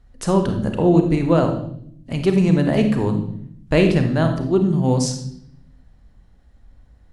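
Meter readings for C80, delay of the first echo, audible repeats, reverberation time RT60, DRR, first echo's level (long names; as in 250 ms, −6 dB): 10.5 dB, no echo audible, no echo audible, 0.65 s, 5.0 dB, no echo audible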